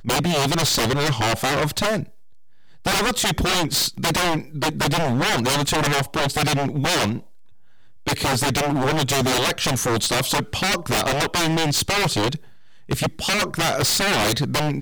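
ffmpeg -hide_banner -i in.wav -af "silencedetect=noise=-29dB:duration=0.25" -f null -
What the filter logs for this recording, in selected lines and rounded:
silence_start: 2.03
silence_end: 2.86 | silence_duration: 0.82
silence_start: 7.20
silence_end: 8.07 | silence_duration: 0.87
silence_start: 12.36
silence_end: 12.89 | silence_duration: 0.53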